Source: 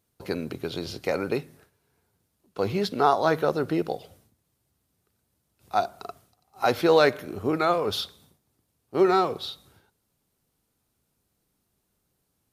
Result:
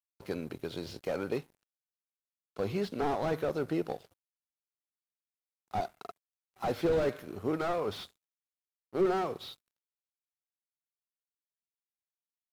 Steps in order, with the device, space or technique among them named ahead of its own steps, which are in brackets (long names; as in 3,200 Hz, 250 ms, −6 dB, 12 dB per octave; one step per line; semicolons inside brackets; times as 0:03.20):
early transistor amplifier (dead-zone distortion −49 dBFS; slew-rate limiting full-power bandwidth 54 Hz)
level −5.5 dB